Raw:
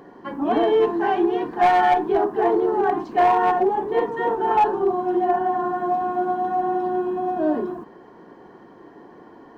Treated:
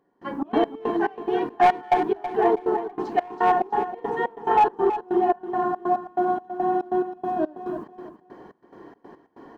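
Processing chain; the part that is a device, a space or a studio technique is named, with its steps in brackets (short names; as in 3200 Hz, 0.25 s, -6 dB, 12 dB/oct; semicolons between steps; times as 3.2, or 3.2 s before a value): trance gate with a delay (step gate "..xx.x..xx" 141 bpm -24 dB; feedback echo 0.325 s, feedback 27%, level -11 dB)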